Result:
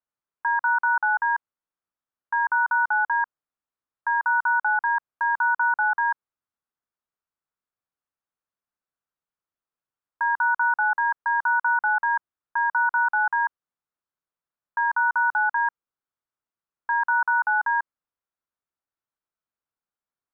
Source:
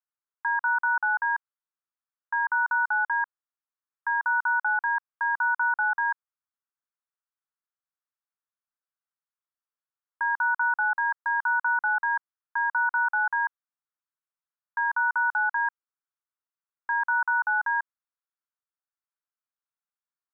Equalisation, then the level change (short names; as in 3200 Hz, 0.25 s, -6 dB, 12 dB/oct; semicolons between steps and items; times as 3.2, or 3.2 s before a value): LPF 1000 Hz 6 dB/oct; +7.0 dB